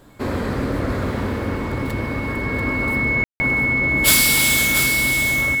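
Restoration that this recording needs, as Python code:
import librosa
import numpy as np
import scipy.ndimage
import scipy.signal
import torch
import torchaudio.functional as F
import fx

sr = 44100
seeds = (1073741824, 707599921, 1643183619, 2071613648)

y = fx.notch(x, sr, hz=2200.0, q=30.0)
y = fx.fix_ambience(y, sr, seeds[0], print_start_s=0.0, print_end_s=0.5, start_s=3.24, end_s=3.4)
y = fx.fix_echo_inverse(y, sr, delay_ms=688, level_db=-7.0)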